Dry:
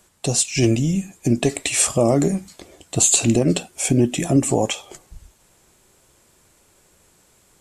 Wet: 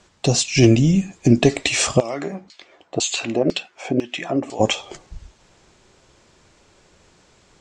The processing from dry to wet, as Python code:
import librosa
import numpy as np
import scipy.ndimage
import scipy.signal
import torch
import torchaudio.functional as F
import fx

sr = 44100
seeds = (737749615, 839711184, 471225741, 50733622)

y = scipy.signal.sosfilt(scipy.signal.butter(4, 6100.0, 'lowpass', fs=sr, output='sos'), x)
y = fx.filter_lfo_bandpass(y, sr, shape='saw_down', hz=2.0, low_hz=470.0, high_hz=4100.0, q=1.1, at=(1.99, 4.59), fade=0.02)
y = F.gain(torch.from_numpy(y), 4.5).numpy()